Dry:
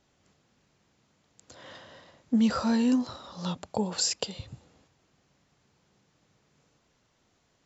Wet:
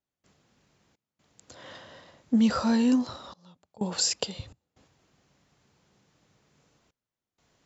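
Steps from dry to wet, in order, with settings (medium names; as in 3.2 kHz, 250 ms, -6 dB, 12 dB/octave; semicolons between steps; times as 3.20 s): trance gate ".xxx.xxxxxxxxx." 63 bpm -24 dB; trim +1.5 dB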